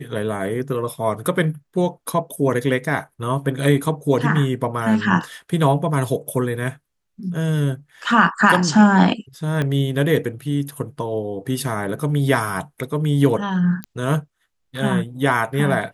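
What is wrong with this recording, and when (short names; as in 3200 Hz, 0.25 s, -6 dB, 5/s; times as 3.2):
9.62 pop -11 dBFS
13.84 pop -14 dBFS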